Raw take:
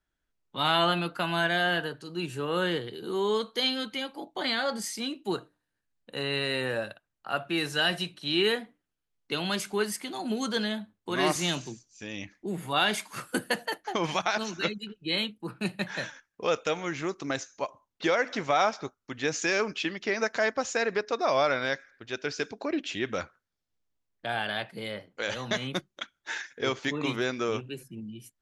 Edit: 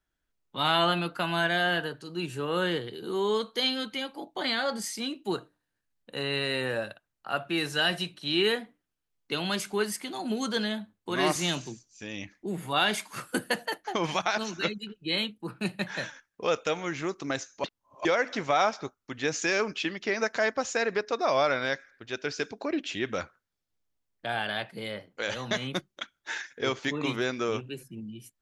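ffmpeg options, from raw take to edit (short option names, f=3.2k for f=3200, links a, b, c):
-filter_complex "[0:a]asplit=3[a][b][c];[a]atrim=end=17.642[d];[b]atrim=start=17.638:end=18.052,asetpts=PTS-STARTPTS,areverse[e];[c]atrim=start=18.048[f];[d][e]acrossfade=d=0.004:c1=hsin:c2=hsin[g];[g][f]acrossfade=d=0.004:c1=hsin:c2=hsin"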